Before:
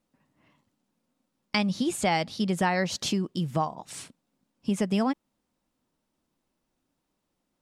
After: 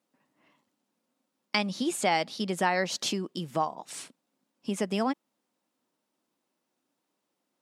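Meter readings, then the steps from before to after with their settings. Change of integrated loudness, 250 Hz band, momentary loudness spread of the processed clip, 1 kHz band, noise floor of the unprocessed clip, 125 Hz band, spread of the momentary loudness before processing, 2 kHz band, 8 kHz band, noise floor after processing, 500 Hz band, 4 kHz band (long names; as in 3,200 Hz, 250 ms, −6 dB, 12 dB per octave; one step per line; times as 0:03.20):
−2.0 dB, −5.0 dB, 14 LU, 0.0 dB, −80 dBFS, −7.0 dB, 11 LU, 0.0 dB, 0.0 dB, −82 dBFS, −0.5 dB, 0.0 dB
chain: high-pass filter 260 Hz 12 dB per octave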